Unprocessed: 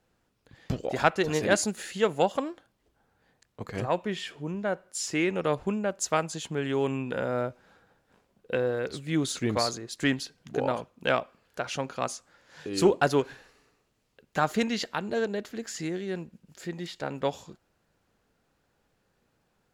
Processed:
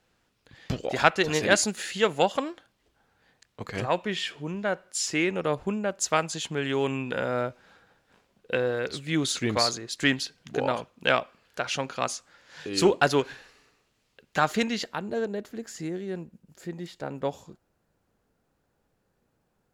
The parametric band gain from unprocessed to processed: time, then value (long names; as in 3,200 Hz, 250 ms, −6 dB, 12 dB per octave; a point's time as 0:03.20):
parametric band 3,300 Hz 2.8 octaves
0:04.96 +6.5 dB
0:05.52 −0.5 dB
0:06.25 +6 dB
0:14.49 +6 dB
0:15.10 −6 dB